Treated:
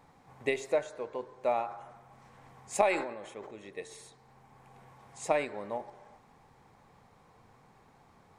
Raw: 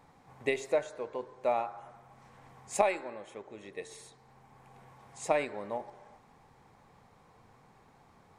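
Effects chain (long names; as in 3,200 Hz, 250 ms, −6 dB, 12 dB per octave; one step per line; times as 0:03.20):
0:01.66–0:03.51: level that may fall only so fast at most 64 dB per second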